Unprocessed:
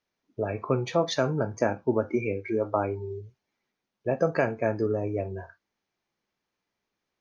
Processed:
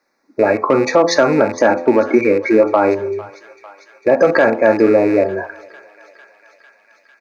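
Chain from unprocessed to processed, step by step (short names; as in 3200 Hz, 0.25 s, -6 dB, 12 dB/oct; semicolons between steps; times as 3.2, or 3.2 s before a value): rattling part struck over -32 dBFS, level -32 dBFS; Butterworth band-stop 3100 Hz, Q 1.5; high shelf 4300 Hz +6 dB; comb 3.6 ms, depth 31%; de-hum 85.61 Hz, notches 15; hard clip -15 dBFS, distortion -24 dB; three-band isolator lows -18 dB, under 230 Hz, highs -13 dB, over 4200 Hz; on a send: thinning echo 0.45 s, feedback 81%, high-pass 840 Hz, level -22 dB; on the sum: maximiser +19.5 dB; gain -1 dB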